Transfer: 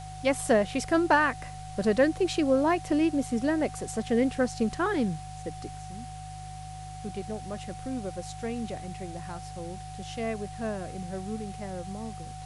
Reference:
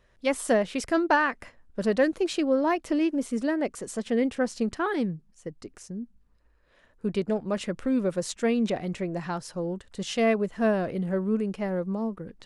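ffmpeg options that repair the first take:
-af "bandreject=f=50.8:t=h:w=4,bandreject=f=101.6:t=h:w=4,bandreject=f=152.4:t=h:w=4,bandreject=f=750:w=30,afwtdn=0.0032,asetnsamples=n=441:p=0,asendcmd='5.75 volume volume 9.5dB',volume=1"

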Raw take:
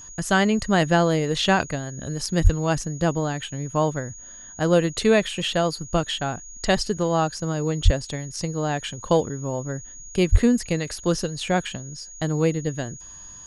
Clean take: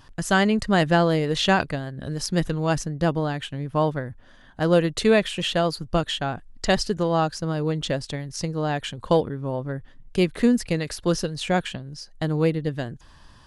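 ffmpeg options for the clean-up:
-filter_complex "[0:a]bandreject=f=6700:w=30,asplit=3[s0][s1][s2];[s0]afade=t=out:st=2.43:d=0.02[s3];[s1]highpass=f=140:w=0.5412,highpass=f=140:w=1.3066,afade=t=in:st=2.43:d=0.02,afade=t=out:st=2.55:d=0.02[s4];[s2]afade=t=in:st=2.55:d=0.02[s5];[s3][s4][s5]amix=inputs=3:normalize=0,asplit=3[s6][s7][s8];[s6]afade=t=out:st=7.84:d=0.02[s9];[s7]highpass=f=140:w=0.5412,highpass=f=140:w=1.3066,afade=t=in:st=7.84:d=0.02,afade=t=out:st=7.96:d=0.02[s10];[s8]afade=t=in:st=7.96:d=0.02[s11];[s9][s10][s11]amix=inputs=3:normalize=0,asplit=3[s12][s13][s14];[s12]afade=t=out:st=10.31:d=0.02[s15];[s13]highpass=f=140:w=0.5412,highpass=f=140:w=1.3066,afade=t=in:st=10.31:d=0.02,afade=t=out:st=10.43:d=0.02[s16];[s14]afade=t=in:st=10.43:d=0.02[s17];[s15][s16][s17]amix=inputs=3:normalize=0"

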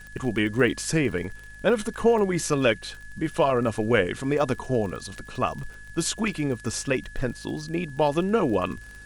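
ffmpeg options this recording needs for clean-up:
-af "adeclick=t=4,bandreject=f=52:t=h:w=4,bandreject=f=104:t=h:w=4,bandreject=f=156:t=h:w=4,bandreject=f=208:t=h:w=4,bandreject=f=260:t=h:w=4,bandreject=f=1700:w=30,agate=range=0.0891:threshold=0.0178"

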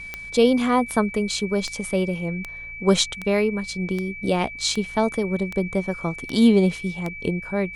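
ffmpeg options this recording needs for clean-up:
-af "adeclick=t=4,bandreject=f=56.5:t=h:w=4,bandreject=f=113:t=h:w=4,bandreject=f=169.5:t=h:w=4,bandreject=f=2300:w=30"

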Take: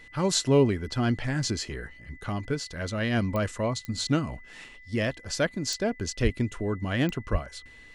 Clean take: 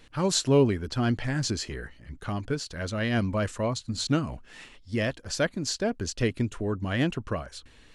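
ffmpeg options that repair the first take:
-filter_complex "[0:a]adeclick=t=4,bandreject=f=2000:w=30,asplit=3[s0][s1][s2];[s0]afade=t=out:st=6.23:d=0.02[s3];[s1]highpass=f=140:w=0.5412,highpass=f=140:w=1.3066,afade=t=in:st=6.23:d=0.02,afade=t=out:st=6.35:d=0.02[s4];[s2]afade=t=in:st=6.35:d=0.02[s5];[s3][s4][s5]amix=inputs=3:normalize=0,asplit=3[s6][s7][s8];[s6]afade=t=out:st=7.31:d=0.02[s9];[s7]highpass=f=140:w=0.5412,highpass=f=140:w=1.3066,afade=t=in:st=7.31:d=0.02,afade=t=out:st=7.43:d=0.02[s10];[s8]afade=t=in:st=7.43:d=0.02[s11];[s9][s10][s11]amix=inputs=3:normalize=0"

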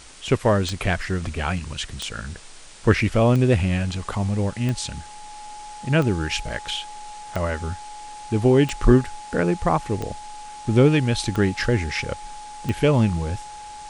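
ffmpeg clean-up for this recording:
-af "adeclick=t=4,bandreject=f=840:w=30,afwtdn=0.0071"

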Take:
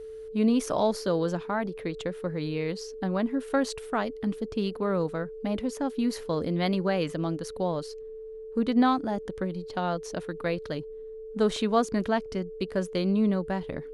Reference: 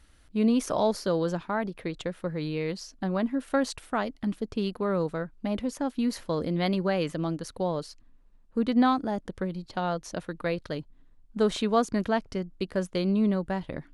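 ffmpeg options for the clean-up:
-af "bandreject=f=440:w=30"

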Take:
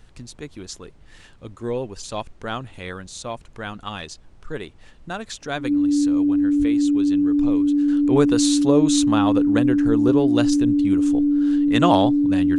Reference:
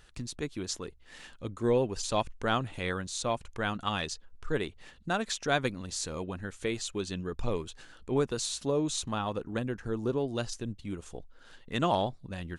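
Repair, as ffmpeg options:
-filter_complex "[0:a]bandreject=f=290:w=30,asplit=3[s0][s1][s2];[s0]afade=t=out:st=6.58:d=0.02[s3];[s1]highpass=f=140:w=0.5412,highpass=f=140:w=1.3066,afade=t=in:st=6.58:d=0.02,afade=t=out:st=6.7:d=0.02[s4];[s2]afade=t=in:st=6.7:d=0.02[s5];[s3][s4][s5]amix=inputs=3:normalize=0,agate=range=0.0891:threshold=0.0141,asetnsamples=n=441:p=0,asendcmd='7.88 volume volume -10dB',volume=1"

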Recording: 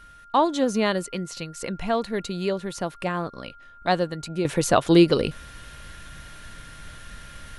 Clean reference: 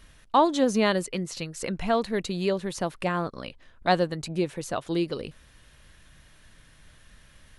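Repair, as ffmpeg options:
-af "bandreject=f=1400:w=30,asetnsamples=n=441:p=0,asendcmd='4.45 volume volume -11.5dB',volume=1"

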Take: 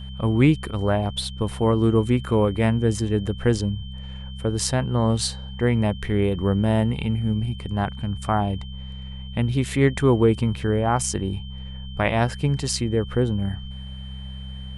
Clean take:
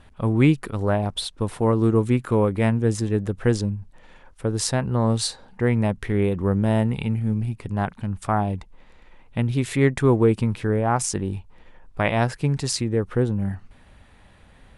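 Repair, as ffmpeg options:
-af "bandreject=f=65.5:t=h:w=4,bandreject=f=131:t=h:w=4,bandreject=f=196.5:t=h:w=4,bandreject=f=3100:w=30"

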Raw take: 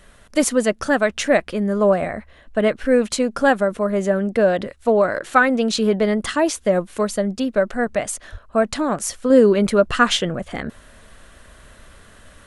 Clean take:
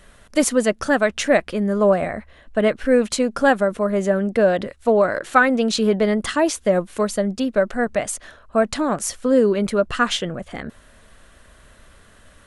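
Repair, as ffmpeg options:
-filter_complex "[0:a]asplit=3[s0][s1][s2];[s0]afade=t=out:st=8.31:d=0.02[s3];[s1]highpass=f=140:w=0.5412,highpass=f=140:w=1.3066,afade=t=in:st=8.31:d=0.02,afade=t=out:st=8.43:d=0.02[s4];[s2]afade=t=in:st=8.43:d=0.02[s5];[s3][s4][s5]amix=inputs=3:normalize=0,asetnsamples=n=441:p=0,asendcmd='9.3 volume volume -3.5dB',volume=1"

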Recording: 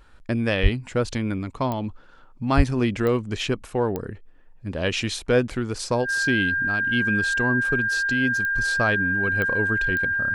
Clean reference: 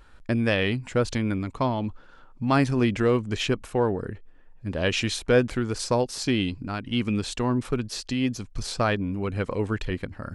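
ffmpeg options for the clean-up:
-filter_complex "[0:a]adeclick=t=4,bandreject=f=1600:w=30,asplit=3[s0][s1][s2];[s0]afade=t=out:st=0.62:d=0.02[s3];[s1]highpass=f=140:w=0.5412,highpass=f=140:w=1.3066,afade=t=in:st=0.62:d=0.02,afade=t=out:st=0.74:d=0.02[s4];[s2]afade=t=in:st=0.74:d=0.02[s5];[s3][s4][s5]amix=inputs=3:normalize=0,asplit=3[s6][s7][s8];[s6]afade=t=out:st=2.56:d=0.02[s9];[s7]highpass=f=140:w=0.5412,highpass=f=140:w=1.3066,afade=t=in:st=2.56:d=0.02,afade=t=out:st=2.68:d=0.02[s10];[s8]afade=t=in:st=2.68:d=0.02[s11];[s9][s10][s11]amix=inputs=3:normalize=0"

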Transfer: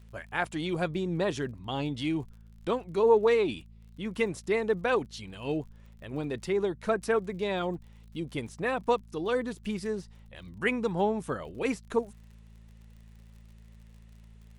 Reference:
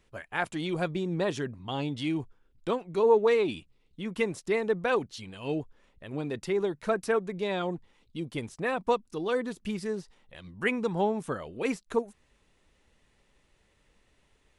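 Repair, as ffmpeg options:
-af "adeclick=t=4,bandreject=f=55.2:t=h:w=4,bandreject=f=110.4:t=h:w=4,bandreject=f=165.6:t=h:w=4,bandreject=f=220.8:t=h:w=4"

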